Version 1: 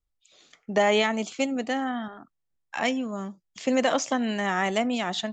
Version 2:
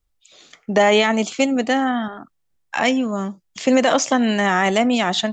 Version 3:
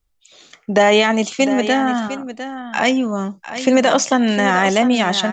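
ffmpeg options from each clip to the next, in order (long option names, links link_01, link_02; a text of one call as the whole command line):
ffmpeg -i in.wav -af "alimiter=level_in=13dB:limit=-1dB:release=50:level=0:latency=1,volume=-4dB" out.wav
ffmpeg -i in.wav -af "aecho=1:1:704:0.266,volume=2dB" out.wav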